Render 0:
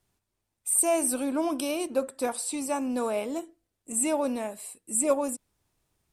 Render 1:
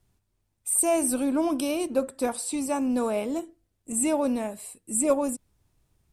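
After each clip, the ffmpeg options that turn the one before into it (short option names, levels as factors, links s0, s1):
-af "lowshelf=f=210:g=11"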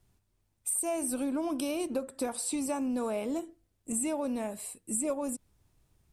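-af "acompressor=threshold=0.0355:ratio=6"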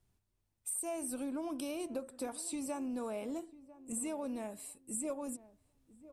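-filter_complex "[0:a]asplit=2[s0][s1];[s1]adelay=998,lowpass=f=890:p=1,volume=0.15,asplit=2[s2][s3];[s3]adelay=998,lowpass=f=890:p=1,volume=0.27,asplit=2[s4][s5];[s5]adelay=998,lowpass=f=890:p=1,volume=0.27[s6];[s0][s2][s4][s6]amix=inputs=4:normalize=0,volume=0.447"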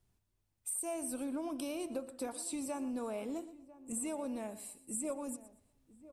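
-af "aecho=1:1:119|238|357:0.158|0.0428|0.0116"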